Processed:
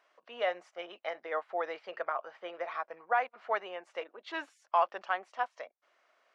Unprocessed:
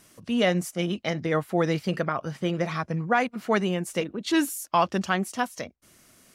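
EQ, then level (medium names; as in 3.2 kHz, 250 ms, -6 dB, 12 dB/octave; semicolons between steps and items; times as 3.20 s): high-pass 620 Hz 24 dB/octave; tape spacing loss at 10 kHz 42 dB; 0.0 dB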